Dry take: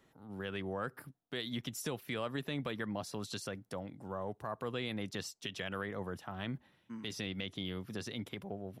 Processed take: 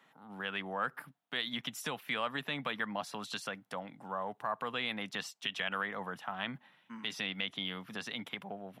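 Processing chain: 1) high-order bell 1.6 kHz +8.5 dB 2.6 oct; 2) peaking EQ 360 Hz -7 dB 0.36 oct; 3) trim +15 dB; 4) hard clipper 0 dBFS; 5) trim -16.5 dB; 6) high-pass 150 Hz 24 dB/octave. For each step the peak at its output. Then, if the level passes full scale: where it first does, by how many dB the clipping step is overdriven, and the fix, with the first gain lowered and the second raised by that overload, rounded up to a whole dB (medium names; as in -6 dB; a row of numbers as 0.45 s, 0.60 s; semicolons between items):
-17.0 dBFS, -17.0 dBFS, -2.0 dBFS, -2.0 dBFS, -18.5 dBFS, -18.5 dBFS; nothing clips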